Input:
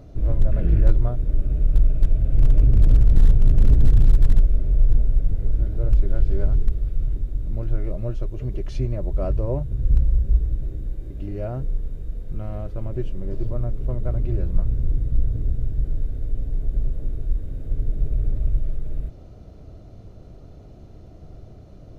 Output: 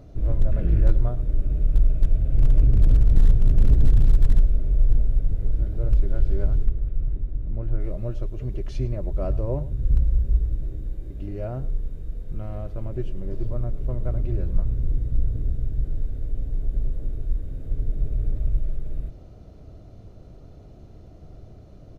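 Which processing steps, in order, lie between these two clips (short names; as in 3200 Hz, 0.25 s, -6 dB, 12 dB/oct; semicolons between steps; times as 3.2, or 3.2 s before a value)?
6.66–7.8 air absorption 320 m; echo 0.106 s -17 dB; gain -2 dB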